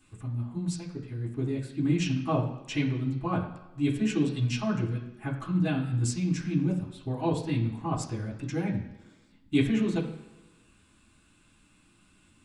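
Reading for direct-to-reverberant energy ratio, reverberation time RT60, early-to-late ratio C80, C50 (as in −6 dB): −5.5 dB, 1.1 s, 10.5 dB, 8.0 dB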